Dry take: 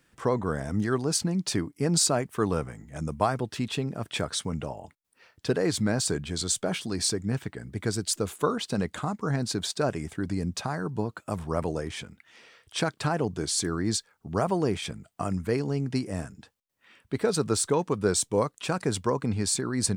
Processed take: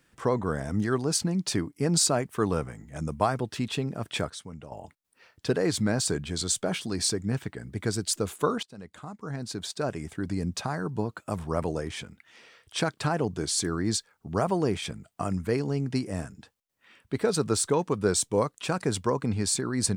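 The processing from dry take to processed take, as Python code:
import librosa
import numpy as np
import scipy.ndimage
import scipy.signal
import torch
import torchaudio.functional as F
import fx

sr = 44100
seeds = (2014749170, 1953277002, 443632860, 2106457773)

y = fx.edit(x, sr, fx.clip_gain(start_s=4.3, length_s=0.42, db=-10.5),
    fx.fade_in_from(start_s=8.63, length_s=1.84, floor_db=-22.0), tone=tone)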